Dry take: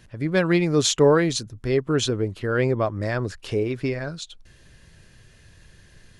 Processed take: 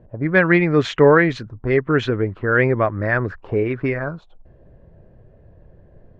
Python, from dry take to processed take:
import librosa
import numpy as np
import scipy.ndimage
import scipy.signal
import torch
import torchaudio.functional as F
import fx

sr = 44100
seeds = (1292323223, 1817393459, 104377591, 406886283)

y = fx.envelope_lowpass(x, sr, base_hz=580.0, top_hz=1900.0, q=2.6, full_db=-20.5, direction='up')
y = F.gain(torch.from_numpy(y), 3.5).numpy()